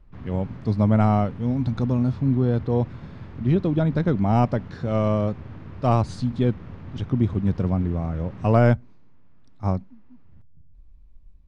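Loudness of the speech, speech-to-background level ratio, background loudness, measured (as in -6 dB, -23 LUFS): -23.0 LUFS, 17.0 dB, -40.0 LUFS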